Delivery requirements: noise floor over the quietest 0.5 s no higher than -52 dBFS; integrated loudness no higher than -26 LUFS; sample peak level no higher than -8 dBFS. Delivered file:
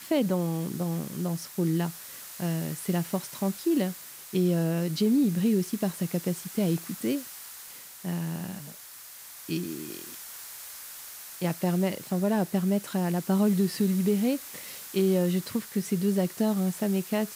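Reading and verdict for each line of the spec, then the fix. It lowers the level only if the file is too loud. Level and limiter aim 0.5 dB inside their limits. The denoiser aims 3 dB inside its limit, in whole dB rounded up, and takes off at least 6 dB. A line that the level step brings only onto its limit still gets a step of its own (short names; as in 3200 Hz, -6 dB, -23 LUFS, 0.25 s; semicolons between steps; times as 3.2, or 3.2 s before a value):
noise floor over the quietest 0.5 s -46 dBFS: fail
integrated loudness -28.5 LUFS: OK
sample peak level -14.5 dBFS: OK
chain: denoiser 9 dB, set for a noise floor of -46 dBFS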